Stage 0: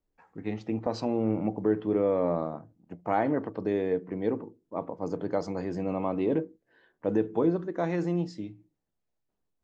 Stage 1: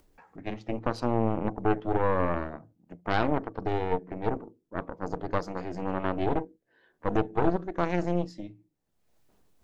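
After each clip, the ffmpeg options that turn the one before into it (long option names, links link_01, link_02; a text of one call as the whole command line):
ffmpeg -i in.wav -af "aeval=exprs='0.211*(cos(1*acos(clip(val(0)/0.211,-1,1)))-cos(1*PI/2))+0.0944*(cos(4*acos(clip(val(0)/0.211,-1,1)))-cos(4*PI/2))':channel_layout=same,acompressor=mode=upward:threshold=-45dB:ratio=2.5,volume=-2.5dB" out.wav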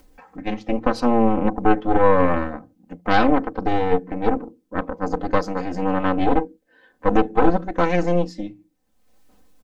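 ffmpeg -i in.wav -af "aecho=1:1:3.9:0.91,volume=6.5dB" out.wav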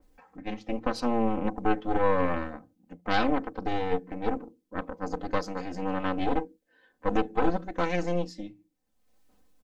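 ffmpeg -i in.wav -af "adynamicequalizer=threshold=0.02:dfrequency=2100:dqfactor=0.7:tfrequency=2100:tqfactor=0.7:attack=5:release=100:ratio=0.375:range=3:mode=boostabove:tftype=highshelf,volume=-9dB" out.wav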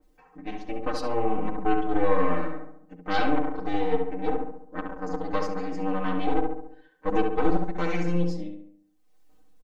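ffmpeg -i in.wav -filter_complex "[0:a]aecho=1:1:6.5:0.99,asplit=2[link_01][link_02];[link_02]adelay=69,lowpass=frequency=2000:poles=1,volume=-3.5dB,asplit=2[link_03][link_04];[link_04]adelay=69,lowpass=frequency=2000:poles=1,volume=0.54,asplit=2[link_05][link_06];[link_06]adelay=69,lowpass=frequency=2000:poles=1,volume=0.54,asplit=2[link_07][link_08];[link_08]adelay=69,lowpass=frequency=2000:poles=1,volume=0.54,asplit=2[link_09][link_10];[link_10]adelay=69,lowpass=frequency=2000:poles=1,volume=0.54,asplit=2[link_11][link_12];[link_12]adelay=69,lowpass=frequency=2000:poles=1,volume=0.54,asplit=2[link_13][link_14];[link_14]adelay=69,lowpass=frequency=2000:poles=1,volume=0.54[link_15];[link_03][link_05][link_07][link_09][link_11][link_13][link_15]amix=inputs=7:normalize=0[link_16];[link_01][link_16]amix=inputs=2:normalize=0,volume=-4dB" out.wav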